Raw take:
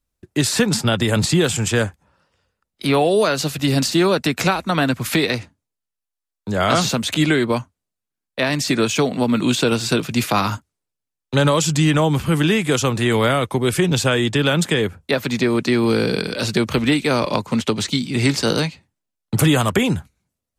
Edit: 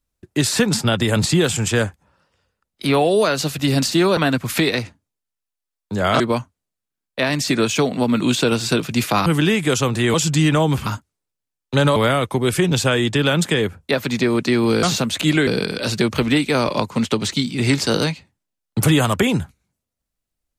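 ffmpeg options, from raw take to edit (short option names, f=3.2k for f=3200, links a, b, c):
-filter_complex "[0:a]asplit=9[a][b][c][d][e][f][g][h][i];[a]atrim=end=4.172[j];[b]atrim=start=4.728:end=6.762[k];[c]atrim=start=7.398:end=10.462[l];[d]atrim=start=12.278:end=13.162[m];[e]atrim=start=11.558:end=12.282[n];[f]atrim=start=10.458:end=11.562[o];[g]atrim=start=13.158:end=16.032[p];[h]atrim=start=6.758:end=7.402[q];[i]atrim=start=16.028[r];[j][k]acrossfade=d=0.004:c1=hsin:c2=hsin[s];[s][l]acrossfade=d=0.004:c1=hsin:c2=hsin[t];[t][m]acrossfade=d=0.004:c1=hsin:c2=hsin[u];[u][n]acrossfade=d=0.004:c1=hsin:c2=hsin[v];[v][o]acrossfade=d=0.004:c1=hsin:c2=hsin[w];[w][p]acrossfade=d=0.004:c1=hsin:c2=hsin[x];[x][q]acrossfade=d=0.004:c1=hsin:c2=hsin[y];[y][r]acrossfade=d=0.004:c1=hsin:c2=hsin"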